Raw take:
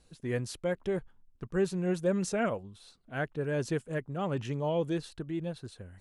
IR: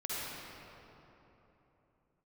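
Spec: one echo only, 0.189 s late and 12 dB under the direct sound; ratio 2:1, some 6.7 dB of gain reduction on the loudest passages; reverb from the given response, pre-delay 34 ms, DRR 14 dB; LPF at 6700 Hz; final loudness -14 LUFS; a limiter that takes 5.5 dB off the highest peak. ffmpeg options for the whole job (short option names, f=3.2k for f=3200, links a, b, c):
-filter_complex "[0:a]lowpass=6.7k,acompressor=threshold=-36dB:ratio=2,alimiter=level_in=6.5dB:limit=-24dB:level=0:latency=1,volume=-6.5dB,aecho=1:1:189:0.251,asplit=2[a][b];[1:a]atrim=start_sample=2205,adelay=34[c];[b][c]afir=irnorm=-1:irlink=0,volume=-18.5dB[d];[a][d]amix=inputs=2:normalize=0,volume=26dB"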